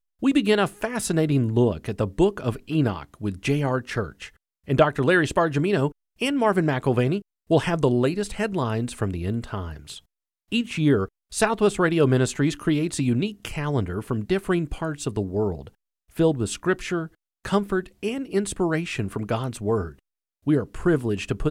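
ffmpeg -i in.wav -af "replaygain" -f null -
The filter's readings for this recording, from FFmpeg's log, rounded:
track_gain = +3.5 dB
track_peak = 0.407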